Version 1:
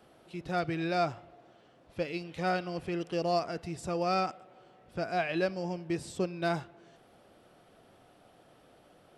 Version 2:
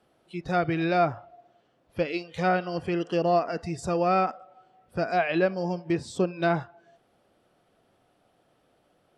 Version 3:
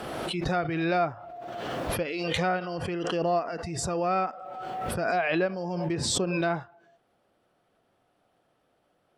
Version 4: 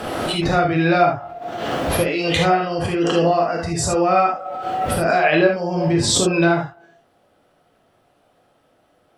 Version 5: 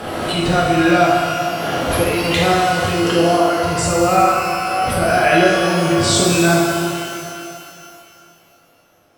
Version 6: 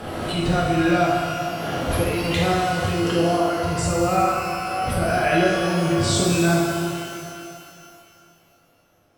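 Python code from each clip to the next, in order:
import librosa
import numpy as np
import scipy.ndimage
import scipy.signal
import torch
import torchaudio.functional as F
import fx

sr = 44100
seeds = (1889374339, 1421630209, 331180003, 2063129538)

y1 = fx.noise_reduce_blind(x, sr, reduce_db=13)
y1 = fx.env_lowpass_down(y1, sr, base_hz=2400.0, full_db=-26.0)
y1 = F.gain(torch.from_numpy(y1), 6.5).numpy()
y2 = fx.peak_eq(y1, sr, hz=1200.0, db=3.0, octaves=2.1)
y2 = fx.pre_swell(y2, sr, db_per_s=23.0)
y2 = F.gain(torch.from_numpy(y2), -5.5).numpy()
y3 = fx.rev_gated(y2, sr, seeds[0], gate_ms=100, shape='flat', drr_db=0.0)
y3 = F.gain(torch.from_numpy(y3), 7.0).numpy()
y4 = fx.rev_shimmer(y3, sr, seeds[1], rt60_s=2.6, semitones=12, shimmer_db=-8, drr_db=0.5)
y5 = fx.low_shelf(y4, sr, hz=190.0, db=8.0)
y5 = F.gain(torch.from_numpy(y5), -7.0).numpy()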